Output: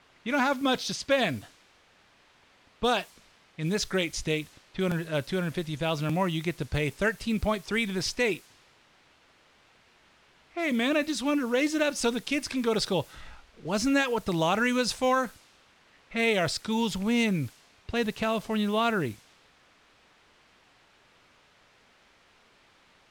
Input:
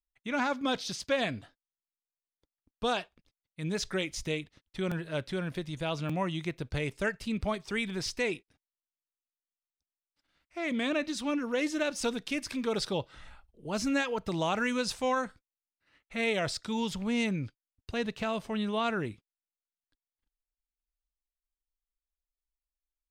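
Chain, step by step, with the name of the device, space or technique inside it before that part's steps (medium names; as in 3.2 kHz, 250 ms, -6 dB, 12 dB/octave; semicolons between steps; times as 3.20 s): cassette deck with a dynamic noise filter (white noise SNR 23 dB; level-controlled noise filter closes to 2.6 kHz, open at -30 dBFS); trim +4.5 dB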